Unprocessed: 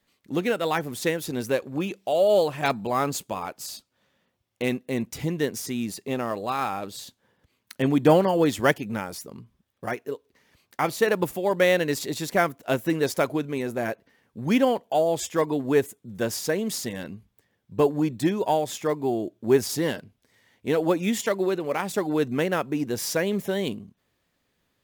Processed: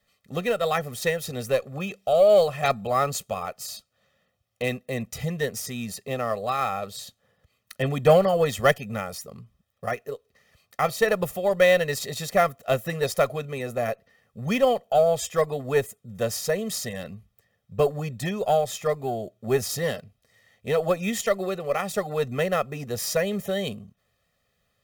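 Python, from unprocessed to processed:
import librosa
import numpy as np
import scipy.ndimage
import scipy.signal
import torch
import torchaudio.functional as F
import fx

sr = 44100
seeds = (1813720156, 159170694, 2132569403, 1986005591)

y = x + 0.91 * np.pad(x, (int(1.6 * sr / 1000.0), 0))[:len(x)]
y = fx.cheby_harmonics(y, sr, harmonics=(6,), levels_db=(-31,), full_scale_db=-3.0)
y = F.gain(torch.from_numpy(y), -2.0).numpy()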